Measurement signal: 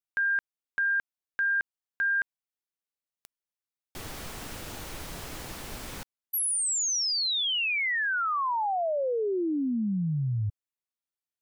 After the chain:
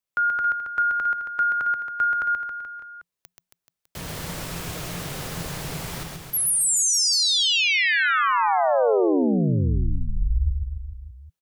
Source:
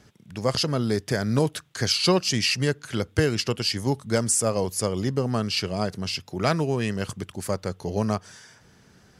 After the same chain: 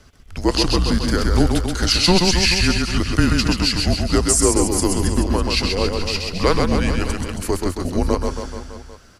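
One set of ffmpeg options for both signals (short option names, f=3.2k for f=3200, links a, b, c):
-af "equalizer=f=650:t=o:w=0.59:g=2.5,afreqshift=-180,aecho=1:1:130|273|430.3|603.3|793.7:0.631|0.398|0.251|0.158|0.1,volume=5dB"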